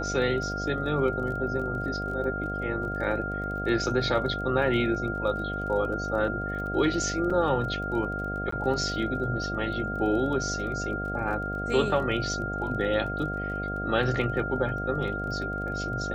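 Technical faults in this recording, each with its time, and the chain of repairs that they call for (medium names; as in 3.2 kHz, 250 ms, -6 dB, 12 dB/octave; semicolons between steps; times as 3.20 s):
buzz 50 Hz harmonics 15 -34 dBFS
crackle 23 per s -37 dBFS
whine 1.4 kHz -32 dBFS
7.30 s: dropout 4.8 ms
8.51–8.52 s: dropout 14 ms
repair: de-click; de-hum 50 Hz, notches 15; band-stop 1.4 kHz, Q 30; interpolate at 7.30 s, 4.8 ms; interpolate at 8.51 s, 14 ms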